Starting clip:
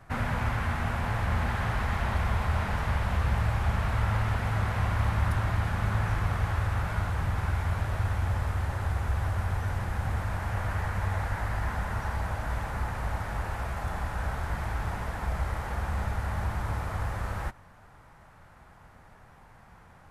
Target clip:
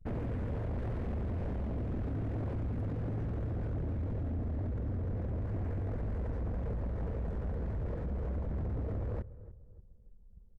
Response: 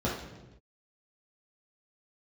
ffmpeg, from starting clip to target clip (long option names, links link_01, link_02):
-filter_complex "[0:a]anlmdn=0.398,firequalizer=gain_entry='entry(300,0);entry(470,8);entry(740,-17)':delay=0.05:min_phase=1,acompressor=threshold=-35dB:ratio=2.5,atempo=1.9,asplit=2[link_01][link_02];[link_02]adelay=293,lowpass=frequency=980:poles=1,volume=-18dB,asplit=2[link_03][link_04];[link_04]adelay=293,lowpass=frequency=980:poles=1,volume=0.37,asplit=2[link_05][link_06];[link_06]adelay=293,lowpass=frequency=980:poles=1,volume=0.37[link_07];[link_03][link_05][link_07]amix=inputs=3:normalize=0[link_08];[link_01][link_08]amix=inputs=2:normalize=0,aeval=exprs='0.0501*sin(PI/2*2.51*val(0)/0.0501)':channel_layout=same,volume=-5.5dB"